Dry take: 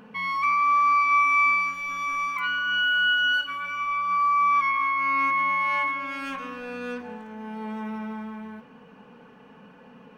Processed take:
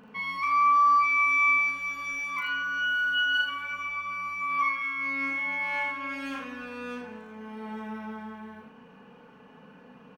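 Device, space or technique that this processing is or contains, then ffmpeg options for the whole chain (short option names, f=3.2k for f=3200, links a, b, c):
slapback doubling: -filter_complex "[0:a]asplit=3[a][b][c];[b]adelay=36,volume=-3.5dB[d];[c]adelay=80,volume=-4.5dB[e];[a][d][e]amix=inputs=3:normalize=0,volume=-4.5dB"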